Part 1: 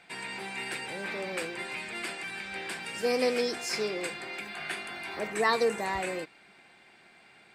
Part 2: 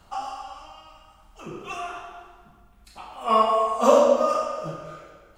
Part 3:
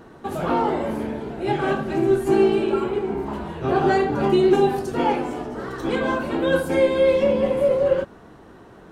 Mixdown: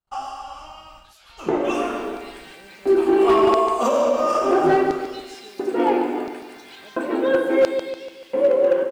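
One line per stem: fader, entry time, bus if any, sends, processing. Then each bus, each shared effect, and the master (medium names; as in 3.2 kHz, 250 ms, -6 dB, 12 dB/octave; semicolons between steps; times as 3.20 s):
-6.5 dB, 1.65 s, no send, echo send -7 dB, compression 5:1, threshold -42 dBFS, peak gain reduction 18.5 dB; bit crusher 9-bit
+1.0 dB, 0.00 s, no send, no echo send, gate -50 dBFS, range -39 dB; peak limiter -15.5 dBFS, peak gain reduction 11.5 dB
-4.0 dB, 0.80 s, no send, echo send -9 dB, tone controls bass -8 dB, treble -13 dB; de-hum 55.21 Hz, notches 38; LFO high-pass square 0.73 Hz 310–4900 Hz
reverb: none
echo: feedback delay 145 ms, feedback 48%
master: level rider gain up to 4 dB; overload inside the chain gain 10 dB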